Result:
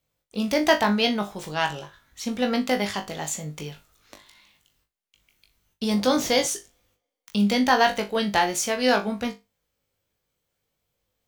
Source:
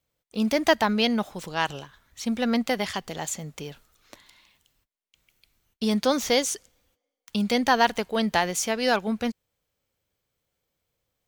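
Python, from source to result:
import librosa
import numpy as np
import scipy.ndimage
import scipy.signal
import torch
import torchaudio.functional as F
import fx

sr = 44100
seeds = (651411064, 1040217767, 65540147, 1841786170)

y = fx.room_flutter(x, sr, wall_m=3.4, rt60_s=0.22)
y = fx.dmg_noise_band(y, sr, seeds[0], low_hz=82.0, high_hz=760.0, level_db=-41.0, at=(5.9, 6.46), fade=0.02)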